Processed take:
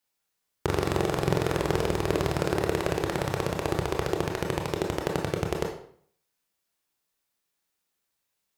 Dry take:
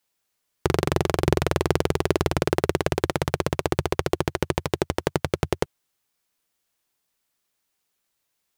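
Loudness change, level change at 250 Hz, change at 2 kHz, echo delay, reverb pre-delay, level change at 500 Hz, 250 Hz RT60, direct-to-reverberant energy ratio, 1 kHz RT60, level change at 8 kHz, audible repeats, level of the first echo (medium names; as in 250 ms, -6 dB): -3.0 dB, -3.0 dB, -3.0 dB, no echo, 22 ms, -3.0 dB, 0.65 s, 1.5 dB, 0.60 s, -4.0 dB, no echo, no echo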